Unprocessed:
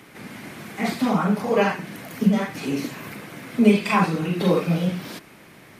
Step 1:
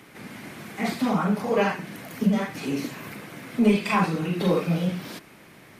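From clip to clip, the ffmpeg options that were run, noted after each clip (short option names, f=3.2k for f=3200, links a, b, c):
-af "acontrast=50,volume=-8dB"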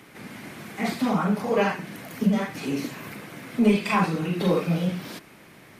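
-af anull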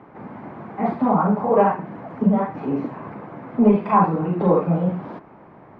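-af "lowpass=f=930:t=q:w=2.1,volume=3.5dB"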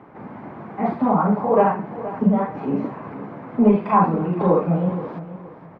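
-af "aecho=1:1:472|944|1416:0.188|0.0527|0.0148"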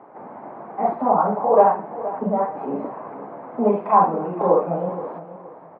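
-af "bandpass=f=700:t=q:w=1.4:csg=0,volume=4.5dB"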